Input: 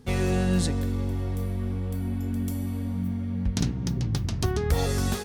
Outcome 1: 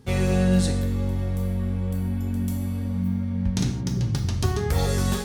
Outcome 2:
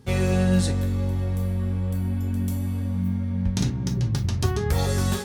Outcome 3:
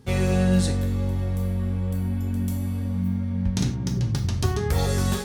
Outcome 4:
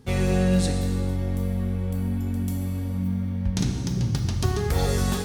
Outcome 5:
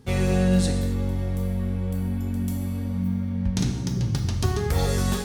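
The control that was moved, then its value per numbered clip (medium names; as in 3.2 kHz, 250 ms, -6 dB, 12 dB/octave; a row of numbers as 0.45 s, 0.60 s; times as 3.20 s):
gated-style reverb, gate: 190 ms, 80 ms, 130 ms, 520 ms, 300 ms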